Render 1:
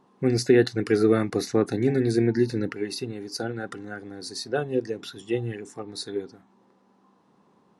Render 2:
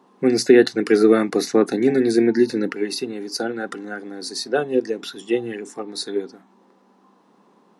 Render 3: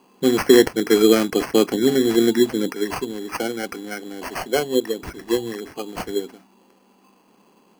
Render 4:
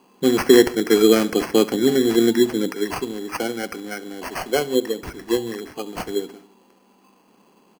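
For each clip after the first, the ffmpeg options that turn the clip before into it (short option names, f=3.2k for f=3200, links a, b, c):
-af "highpass=f=190:w=0.5412,highpass=f=190:w=1.3066,volume=6dB"
-af "acrusher=samples=12:mix=1:aa=0.000001"
-af "aecho=1:1:69|138|207|276|345:0.112|0.0628|0.0352|0.0197|0.011"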